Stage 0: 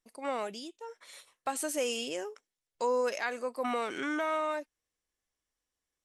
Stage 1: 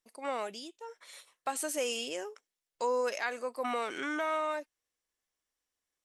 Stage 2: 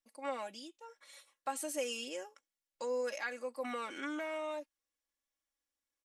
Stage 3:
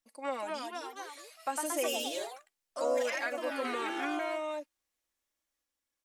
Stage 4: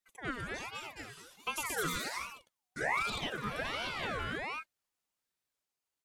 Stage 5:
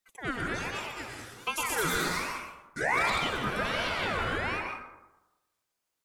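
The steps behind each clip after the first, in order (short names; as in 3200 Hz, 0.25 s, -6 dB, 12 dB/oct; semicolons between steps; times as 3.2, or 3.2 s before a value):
low shelf 240 Hz -8 dB
comb 3.6 ms, depth 71%; gain -7 dB
echoes that change speed 0.266 s, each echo +2 st, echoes 3; gain +3 dB
ring modulator with a swept carrier 1300 Hz, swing 45%, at 1.3 Hz
plate-style reverb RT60 1 s, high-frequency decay 0.45×, pre-delay 0.105 s, DRR 2 dB; gain +4.5 dB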